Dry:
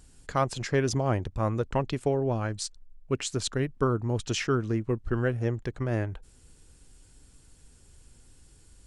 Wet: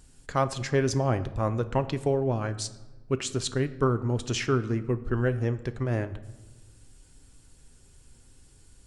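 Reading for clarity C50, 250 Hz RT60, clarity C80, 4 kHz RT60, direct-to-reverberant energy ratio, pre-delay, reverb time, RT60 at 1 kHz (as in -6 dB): 15.0 dB, 1.5 s, 17.0 dB, 0.75 s, 10.5 dB, 8 ms, 1.2 s, 1.2 s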